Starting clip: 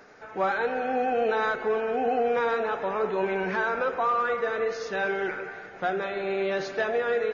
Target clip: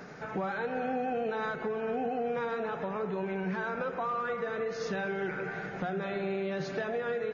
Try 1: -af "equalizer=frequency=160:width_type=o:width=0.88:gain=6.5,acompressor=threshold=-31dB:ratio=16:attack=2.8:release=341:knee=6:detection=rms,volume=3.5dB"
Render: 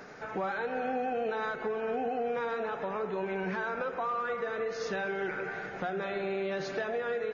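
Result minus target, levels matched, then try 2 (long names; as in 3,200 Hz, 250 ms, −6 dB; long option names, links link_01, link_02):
125 Hz band −5.0 dB
-af "equalizer=frequency=160:width_type=o:width=0.88:gain=16,acompressor=threshold=-31dB:ratio=16:attack=2.8:release=341:knee=6:detection=rms,volume=3.5dB"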